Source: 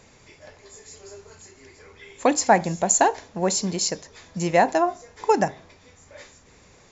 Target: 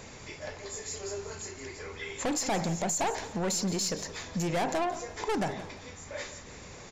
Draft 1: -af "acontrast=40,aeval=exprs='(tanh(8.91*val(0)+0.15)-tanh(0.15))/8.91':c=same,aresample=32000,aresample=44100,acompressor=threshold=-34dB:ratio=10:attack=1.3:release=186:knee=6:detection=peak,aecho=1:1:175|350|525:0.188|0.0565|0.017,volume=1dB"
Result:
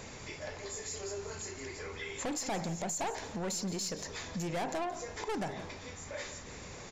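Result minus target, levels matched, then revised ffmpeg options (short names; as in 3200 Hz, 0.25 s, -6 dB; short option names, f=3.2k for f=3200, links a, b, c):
compressor: peak gain reduction +6 dB
-af "acontrast=40,aeval=exprs='(tanh(8.91*val(0)+0.15)-tanh(0.15))/8.91':c=same,aresample=32000,aresample=44100,acompressor=threshold=-27.5dB:ratio=10:attack=1.3:release=186:knee=6:detection=peak,aecho=1:1:175|350|525:0.188|0.0565|0.017,volume=1dB"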